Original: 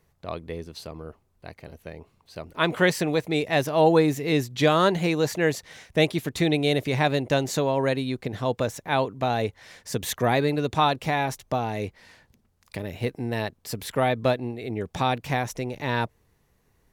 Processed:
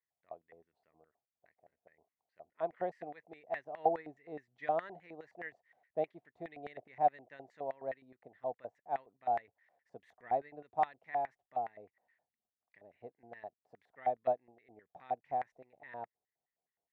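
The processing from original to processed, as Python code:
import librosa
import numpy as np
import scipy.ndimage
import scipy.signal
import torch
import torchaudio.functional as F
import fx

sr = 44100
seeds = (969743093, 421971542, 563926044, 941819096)

y = fx.tilt_shelf(x, sr, db=8.0, hz=850.0)
y = fx.filter_lfo_bandpass(y, sr, shape='square', hz=4.8, low_hz=720.0, high_hz=1900.0, q=7.7)
y = fx.upward_expand(y, sr, threshold_db=-48.0, expansion=1.5)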